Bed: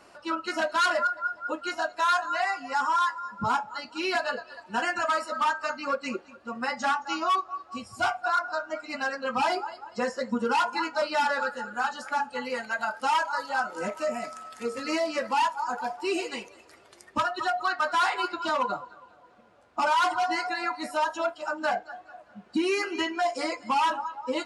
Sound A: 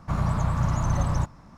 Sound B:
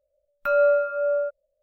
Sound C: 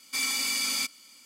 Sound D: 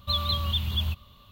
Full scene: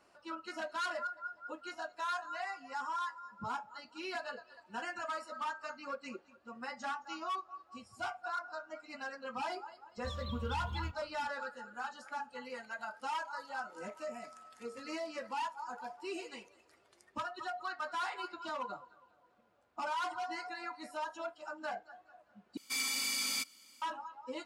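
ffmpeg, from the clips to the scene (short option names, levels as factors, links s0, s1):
-filter_complex "[0:a]volume=0.224[s0];[4:a]lowpass=f=1200:p=1[s1];[s0]asplit=2[s2][s3];[s2]atrim=end=22.574[s4];[3:a]atrim=end=1.25,asetpts=PTS-STARTPTS,volume=0.473[s5];[s3]atrim=start=23.816[s6];[s1]atrim=end=1.31,asetpts=PTS-STARTPTS,volume=0.266,afade=t=in:d=0.004:c=hsin,afade=t=out:st=1.306:d=0.004:c=hsin,adelay=9970[s7];[s4][s5]acrossfade=d=0.004:c1=hsin:c2=hsin[s8];[s8][s6]acrossfade=d=0.004:c1=hsin:c2=hsin[s9];[s9][s7]amix=inputs=2:normalize=0"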